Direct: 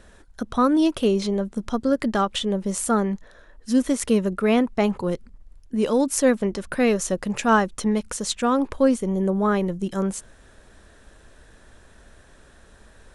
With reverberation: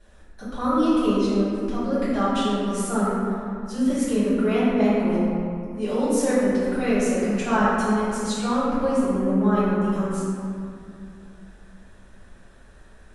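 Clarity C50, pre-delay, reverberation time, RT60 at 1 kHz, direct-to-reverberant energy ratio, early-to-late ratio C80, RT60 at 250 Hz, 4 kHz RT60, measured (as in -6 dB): -3.5 dB, 3 ms, 2.4 s, 2.4 s, -13.0 dB, -1.5 dB, 3.2 s, 1.3 s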